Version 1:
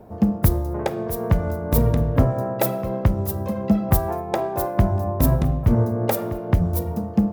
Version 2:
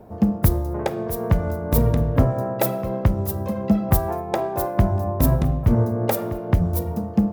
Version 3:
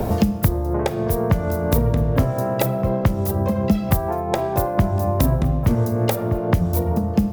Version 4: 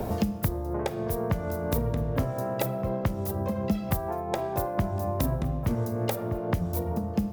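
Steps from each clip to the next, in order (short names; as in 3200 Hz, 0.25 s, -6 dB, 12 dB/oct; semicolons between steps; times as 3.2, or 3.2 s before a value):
nothing audible
three-band squash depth 100%
low shelf 190 Hz -3 dB; gain -7.5 dB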